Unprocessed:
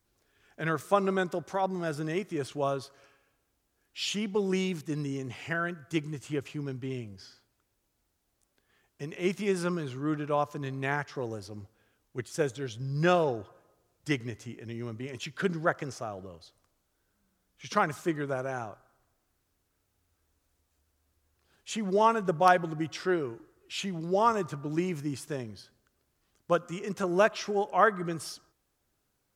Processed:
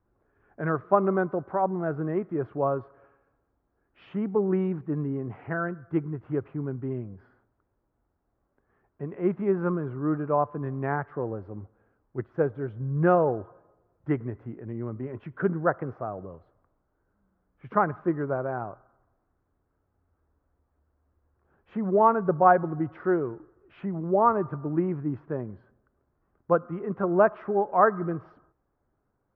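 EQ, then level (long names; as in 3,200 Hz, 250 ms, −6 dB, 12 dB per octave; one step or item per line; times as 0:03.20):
low-pass filter 1,400 Hz 24 dB per octave
+4.0 dB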